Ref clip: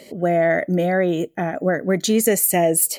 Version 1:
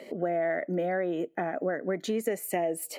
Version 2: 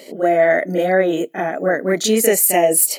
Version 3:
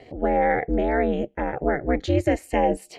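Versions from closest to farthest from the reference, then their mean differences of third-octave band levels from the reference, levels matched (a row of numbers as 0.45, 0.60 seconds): 2, 1, 3; 3.0, 4.0, 8.0 decibels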